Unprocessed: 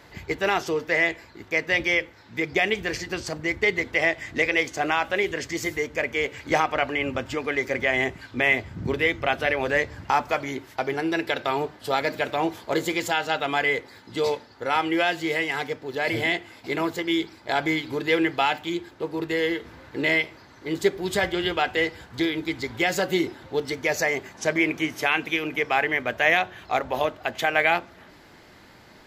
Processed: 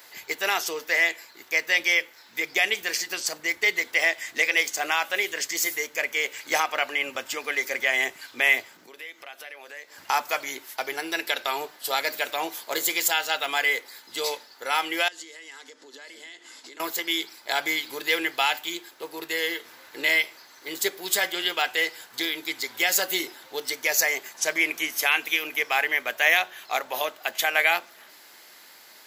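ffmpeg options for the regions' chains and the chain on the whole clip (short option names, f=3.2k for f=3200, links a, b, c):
-filter_complex "[0:a]asettb=1/sr,asplit=3[a][b][c];[a]atrim=end=8.654[d];[b]atrim=start=8.65:end=9.98,asetpts=PTS-STARTPTS,afade=t=in:d=0.004:c=qsin,afade=t=out:st=1.326:d=0.004:c=qsin,highpass=240,acompressor=threshold=-42dB:ratio=3:attack=3.2:release=140:knee=1:detection=peak[e];[c]atrim=start=9.976[f];[d][e]acrossfade=d=0.004:c1=hsin:c2=qsin[g];[g][f]acrossfade=d=0.004:c1=qsin:c2=hsin,asettb=1/sr,asplit=3[h][i][j];[h]atrim=end=15.084[k];[i]atrim=start=15.08:end=16.8,asetpts=PTS-STARTPTS,afade=t=in:d=0.004:c=qsin,afade=t=out:st=1.716:d=0.004:c=qsin,acompressor=threshold=-38dB:ratio=8:attack=3.2:release=140:knee=1:detection=peak,highpass=f=180:w=0.5412,highpass=f=180:w=1.3066,equalizer=f=270:t=q:w=4:g=6,equalizer=f=720:t=q:w=4:g=-8,equalizer=f=2.4k:t=q:w=4:g=-8,equalizer=f=6.9k:t=q:w=4:g=4,lowpass=f=9.1k:w=0.5412,lowpass=f=9.1k:w=1.3066[l];[j]atrim=start=16.796[m];[k][l]acrossfade=d=0.004:c1=hsin:c2=qsin[n];[n][m]acrossfade=d=0.004:c1=qsin:c2=hsin,highpass=f=440:p=1,aemphasis=mode=production:type=riaa,volume=-1.5dB"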